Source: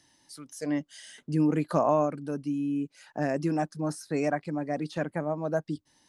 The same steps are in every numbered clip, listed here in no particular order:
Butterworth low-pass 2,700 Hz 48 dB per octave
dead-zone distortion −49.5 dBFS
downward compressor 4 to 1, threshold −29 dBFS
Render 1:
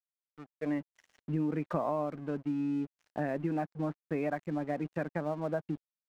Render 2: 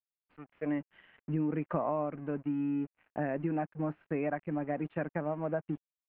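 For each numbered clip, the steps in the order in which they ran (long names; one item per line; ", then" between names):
Butterworth low-pass, then dead-zone distortion, then downward compressor
dead-zone distortion, then downward compressor, then Butterworth low-pass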